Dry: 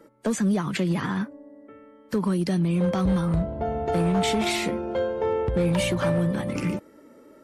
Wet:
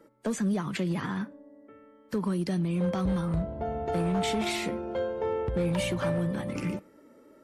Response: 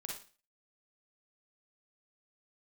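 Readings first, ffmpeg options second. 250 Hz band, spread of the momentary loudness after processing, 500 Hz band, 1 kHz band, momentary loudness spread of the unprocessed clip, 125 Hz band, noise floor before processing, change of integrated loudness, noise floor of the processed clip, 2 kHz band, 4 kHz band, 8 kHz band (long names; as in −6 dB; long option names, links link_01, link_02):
−5.0 dB, 6 LU, −5.0 dB, −5.0 dB, 6 LU, −5.0 dB, −52 dBFS, −5.0 dB, −57 dBFS, −5.0 dB, −5.5 dB, −5.5 dB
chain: -filter_complex "[0:a]asplit=2[link_01][link_02];[1:a]atrim=start_sample=2205,lowpass=4800[link_03];[link_02][link_03]afir=irnorm=-1:irlink=0,volume=-17.5dB[link_04];[link_01][link_04]amix=inputs=2:normalize=0,volume=-5.5dB"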